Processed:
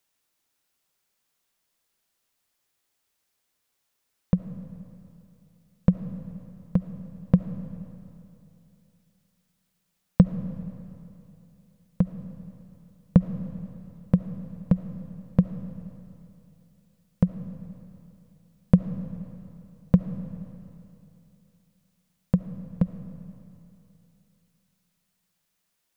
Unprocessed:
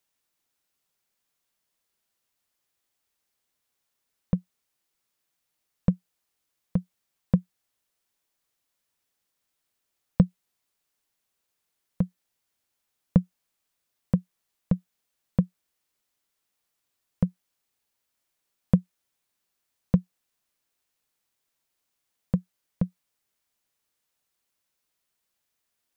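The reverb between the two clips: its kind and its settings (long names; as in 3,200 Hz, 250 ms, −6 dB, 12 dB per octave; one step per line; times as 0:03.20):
comb and all-pass reverb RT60 2.9 s, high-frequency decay 0.95×, pre-delay 30 ms, DRR 10 dB
level +3 dB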